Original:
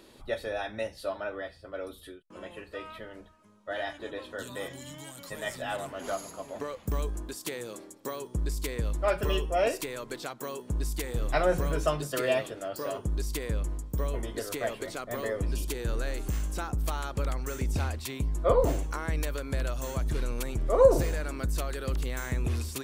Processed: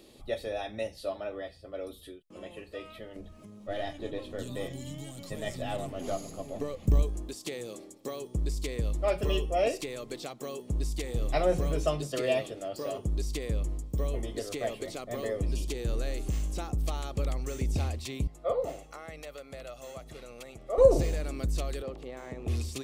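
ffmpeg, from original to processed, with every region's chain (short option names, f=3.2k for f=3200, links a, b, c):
-filter_complex "[0:a]asettb=1/sr,asplit=3[a][b][c];[a]atrim=end=3.164[d];[b]atrim=start=3.16:end=7.03,asetpts=PTS-STARTPTS,afade=t=in:d=0.004:c=qsin,afade=t=out:st=3.866:d=0.004:c=qsin,aeval=exprs='if(lt(val(0),0),0.708*val(0),val(0))':c=same,lowshelf=f=330:g=9.5,acompressor=mode=upward:threshold=-38dB:ratio=2.5:attack=3.2:release=140:knee=2.83:detection=peak[e];[c]atrim=start=7.026[f];[d][e]acrossfade=d=0.004:c1=hsin:c2=qsin[g];[g][f]acrossfade=d=0.004:c1=qsin:c2=hsin,asettb=1/sr,asplit=3[h][i][j];[h]atrim=end=18.274[k];[i]atrim=start=18.27:end=20.78,asetpts=PTS-STARTPTS,afade=t=in:d=0.004:c=qsin,afade=t=out:st=2.506:d=0.004:c=qsin,highpass=f=890:p=1,highshelf=f=3.3k:g=-12,aecho=1:1:1.5:0.36,atrim=end_sample=110691[l];[j]atrim=start=20.776[m];[k][l]acrossfade=d=0.004:c1=hsin:c2=qsin[n];[n][m]acrossfade=d=0.004:c1=qsin:c2=hsin,asettb=1/sr,asplit=3[o][p][q];[o]atrim=end=21.824[r];[p]atrim=start=21.82:end=22.48,asetpts=PTS-STARTPTS,afade=t=in:d=0.004:c=qsin,afade=t=out:st=0.656:d=0.004:c=qsin,aeval=exprs='val(0)+0.5*0.00891*sgn(val(0))':c=same,bandpass=f=660:t=q:w=0.75[s];[q]atrim=start=22.476[t];[r][s]acrossfade=d=0.004:c1=hsin:c2=qsin[u];[u][t]acrossfade=d=0.004:c1=qsin:c2=hsin,bandreject=f=960:w=6.1,acrossover=split=8400[v][w];[w]acompressor=threshold=-55dB:ratio=4:attack=1:release=60[x];[v][x]amix=inputs=2:normalize=0,equalizer=f=1.5k:t=o:w=0.56:g=-11.5"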